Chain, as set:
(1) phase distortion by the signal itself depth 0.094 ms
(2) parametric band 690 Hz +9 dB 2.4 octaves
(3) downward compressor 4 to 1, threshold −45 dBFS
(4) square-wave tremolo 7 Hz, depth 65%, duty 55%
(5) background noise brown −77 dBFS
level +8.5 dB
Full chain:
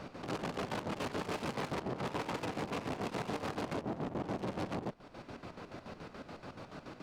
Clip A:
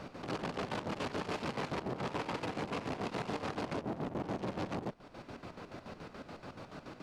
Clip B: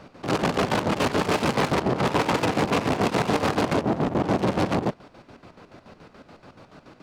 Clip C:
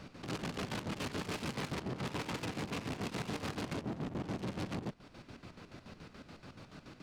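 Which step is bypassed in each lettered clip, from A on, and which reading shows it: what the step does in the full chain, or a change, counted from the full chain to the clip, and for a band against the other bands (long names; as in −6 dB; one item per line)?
1, 8 kHz band −2.5 dB
3, average gain reduction 10.0 dB
2, 1 kHz band −5.5 dB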